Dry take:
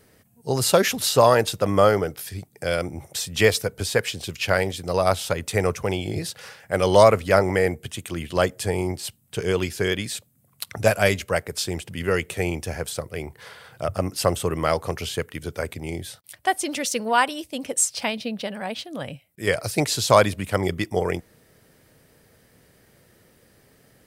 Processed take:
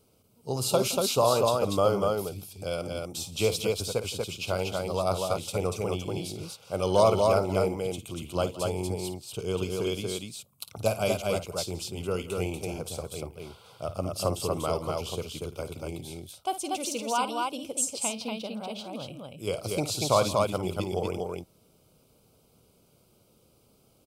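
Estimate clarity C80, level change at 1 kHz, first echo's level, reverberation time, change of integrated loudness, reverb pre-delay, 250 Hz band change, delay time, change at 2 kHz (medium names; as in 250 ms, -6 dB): no reverb, -6.0 dB, -12.5 dB, no reverb, -6.0 dB, no reverb, -5.5 dB, 54 ms, -13.5 dB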